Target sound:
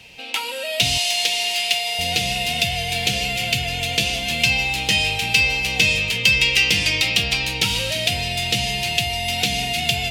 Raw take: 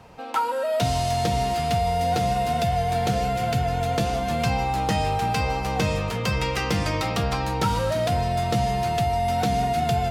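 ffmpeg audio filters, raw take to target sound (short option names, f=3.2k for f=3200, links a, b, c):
-filter_complex "[0:a]asettb=1/sr,asplit=3[a][b][c];[a]atrim=end=0.984[d];[b]atrim=start=0.98:end=1.99,asetpts=PTS-STARTPTS,afade=t=in:d=0.004:c=qsin,afade=t=out:st=1.006:d=0.004:c=qsin,highpass=550[e];[c]atrim=start=1.986[f];[d][e]acrossfade=d=0.004:c1=hsin:c2=qsin[g];[g][f]acrossfade=d=0.004:c1=qsin:c2=hsin,highshelf=f=1.8k:t=q:w=3:g=13.5,volume=-3.5dB"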